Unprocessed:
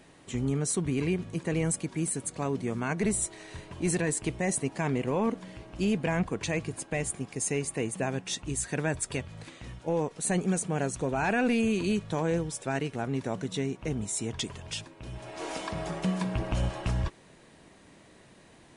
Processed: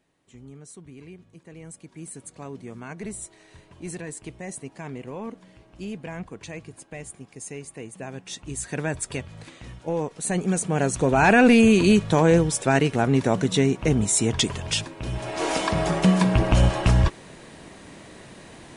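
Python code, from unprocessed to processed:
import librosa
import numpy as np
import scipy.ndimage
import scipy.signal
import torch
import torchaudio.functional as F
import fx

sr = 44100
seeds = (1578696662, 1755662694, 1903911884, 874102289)

y = fx.gain(x, sr, db=fx.line((1.53, -15.5), (2.18, -7.0), (7.91, -7.0), (8.79, 2.0), (10.29, 2.0), (11.25, 11.0)))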